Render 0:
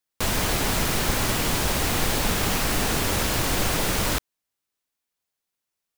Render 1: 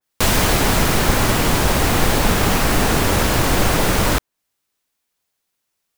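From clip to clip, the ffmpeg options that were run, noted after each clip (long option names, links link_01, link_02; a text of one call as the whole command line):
ffmpeg -i in.wav -af "adynamicequalizer=threshold=0.00708:dfrequency=2100:dqfactor=0.7:tfrequency=2100:tqfactor=0.7:attack=5:release=100:ratio=0.375:range=2.5:mode=cutabove:tftype=highshelf,volume=8.5dB" out.wav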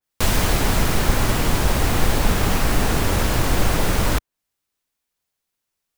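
ffmpeg -i in.wav -af "lowshelf=frequency=93:gain=7,volume=-5dB" out.wav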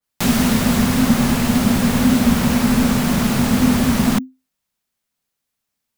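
ffmpeg -i in.wav -af "afreqshift=-260,volume=1.5dB" out.wav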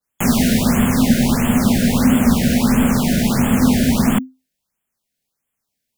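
ffmpeg -i in.wav -af "afftfilt=real='re*(1-between(b*sr/1024,980*pow(5000/980,0.5+0.5*sin(2*PI*1.5*pts/sr))/1.41,980*pow(5000/980,0.5+0.5*sin(2*PI*1.5*pts/sr))*1.41))':imag='im*(1-between(b*sr/1024,980*pow(5000/980,0.5+0.5*sin(2*PI*1.5*pts/sr))/1.41,980*pow(5000/980,0.5+0.5*sin(2*PI*1.5*pts/sr))*1.41))':win_size=1024:overlap=0.75,volume=1dB" out.wav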